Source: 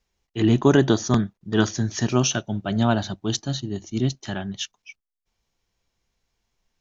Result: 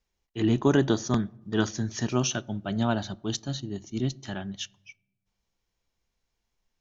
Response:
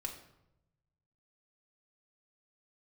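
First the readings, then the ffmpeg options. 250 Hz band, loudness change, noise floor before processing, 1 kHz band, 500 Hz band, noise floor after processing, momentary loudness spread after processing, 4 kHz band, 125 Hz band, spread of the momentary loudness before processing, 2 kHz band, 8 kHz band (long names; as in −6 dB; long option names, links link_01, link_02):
−5.0 dB, −5.5 dB, −81 dBFS, −5.5 dB, −5.5 dB, −82 dBFS, 13 LU, −5.5 dB, −6.0 dB, 13 LU, −5.5 dB, can't be measured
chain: -filter_complex "[0:a]asplit=2[link_01][link_02];[1:a]atrim=start_sample=2205,highshelf=frequency=3500:gain=-8.5[link_03];[link_02][link_03]afir=irnorm=-1:irlink=0,volume=-15dB[link_04];[link_01][link_04]amix=inputs=2:normalize=0,volume=-6dB"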